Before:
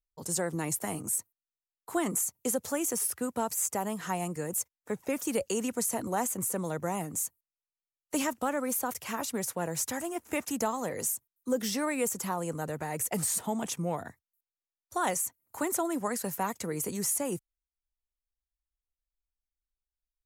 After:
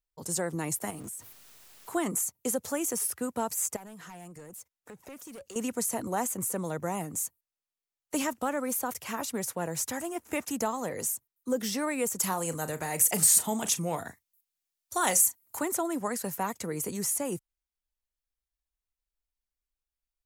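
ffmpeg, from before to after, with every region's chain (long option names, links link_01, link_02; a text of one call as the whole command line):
ffmpeg -i in.wav -filter_complex "[0:a]asettb=1/sr,asplit=3[link_01][link_02][link_03];[link_01]atrim=end=0.904[link_04];[link_02]atrim=start=0.9:end=1.9,asetpts=PTS-STARTPTS,afade=type=in:duration=0.004:curve=qsin,afade=type=out:start_time=0.996:duration=0.004:curve=qsin,aeval=exprs='val(0)+0.5*0.00668*sgn(val(0))':channel_layout=same,acompressor=threshold=-38dB:ratio=5:attack=3.2:release=140:knee=1:detection=peak[link_05];[link_03]atrim=start=1.896[link_06];[link_04][link_05]acrossfade=duration=0.004:curve1=hsin:curve2=qsin[link_07];[link_07][link_06]acrossfade=duration=0.004:curve1=qsin:curve2=hsin,asettb=1/sr,asplit=3[link_08][link_09][link_10];[link_08]atrim=end=3.764[link_11];[link_09]atrim=start=3.76:end=5.56,asetpts=PTS-STARTPTS,afade=type=in:duration=0.004:curve=qsin,afade=type=out:start_time=1.796:duration=0.004:curve=qsin,asoftclip=type=hard:threshold=-29.5dB,acompressor=threshold=-43dB:ratio=12:attack=3.2:release=140:knee=1:detection=peak[link_12];[link_10]atrim=start=5.556[link_13];[link_11][link_12]acrossfade=duration=0.004:curve1=hsin:curve2=qsin[link_14];[link_14][link_13]acrossfade=duration=0.004:curve1=qsin:curve2=hsin,asettb=1/sr,asplit=3[link_15][link_16][link_17];[link_15]atrim=end=12.194[link_18];[link_16]atrim=start=12.19:end=15.59,asetpts=PTS-STARTPTS,afade=type=in:duration=0.004:curve=qsin,afade=type=out:start_time=3.396:duration=0.004:curve=qsin,highshelf=frequency=2400:gain=10,asplit=2[link_19][link_20];[link_20]adelay=37,volume=-13dB[link_21];[link_19][link_21]amix=inputs=2:normalize=0,atrim=end_sample=149940[link_22];[link_17]atrim=start=15.586[link_23];[link_18][link_22]acrossfade=duration=0.004:curve1=hsin:curve2=qsin[link_24];[link_24][link_23]acrossfade=duration=0.004:curve1=qsin:curve2=hsin" out.wav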